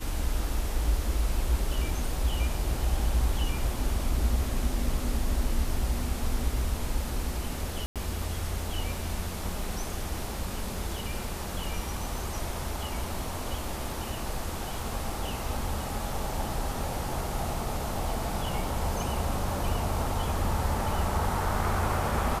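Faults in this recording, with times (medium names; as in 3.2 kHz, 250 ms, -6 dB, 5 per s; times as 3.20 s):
7.86–7.96 s: dropout 97 ms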